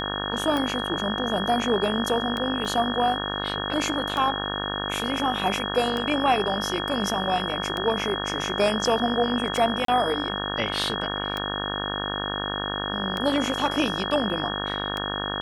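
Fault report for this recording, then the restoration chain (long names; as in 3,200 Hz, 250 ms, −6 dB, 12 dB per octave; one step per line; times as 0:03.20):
mains buzz 50 Hz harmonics 36 −31 dBFS
scratch tick 33 1/3 rpm −14 dBFS
whistle 3,300 Hz −31 dBFS
0:02.65: drop-out 2 ms
0:09.85–0:09.88: drop-out 33 ms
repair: click removal
notch filter 3,300 Hz, Q 30
hum removal 50 Hz, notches 36
repair the gap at 0:02.65, 2 ms
repair the gap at 0:09.85, 33 ms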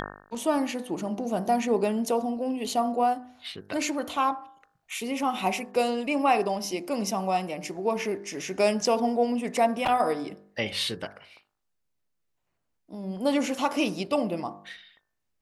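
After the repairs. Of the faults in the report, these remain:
none of them is left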